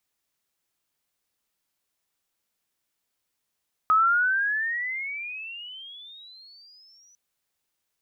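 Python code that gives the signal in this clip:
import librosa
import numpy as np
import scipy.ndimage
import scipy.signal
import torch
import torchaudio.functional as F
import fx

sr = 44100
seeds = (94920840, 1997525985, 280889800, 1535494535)

y = fx.riser_tone(sr, length_s=3.25, level_db=-15.5, wave='sine', hz=1260.0, rise_st=27.0, swell_db=-39.0)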